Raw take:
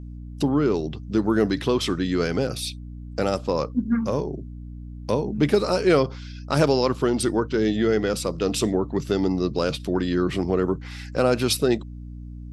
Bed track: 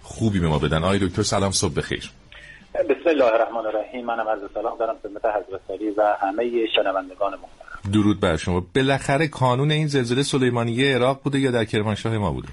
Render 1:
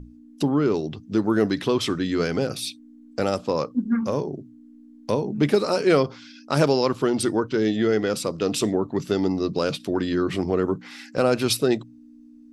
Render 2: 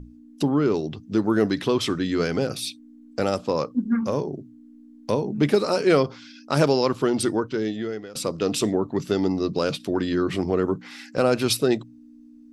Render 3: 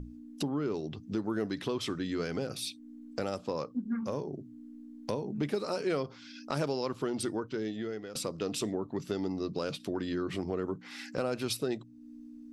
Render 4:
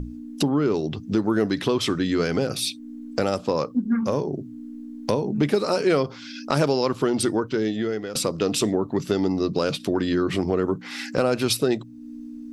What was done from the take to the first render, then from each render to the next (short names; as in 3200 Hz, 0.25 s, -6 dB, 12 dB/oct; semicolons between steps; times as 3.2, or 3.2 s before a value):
notches 60/120/180 Hz
7.26–8.15 fade out, to -20.5 dB
compressor 2:1, threshold -39 dBFS, peak gain reduction 14 dB
gain +11 dB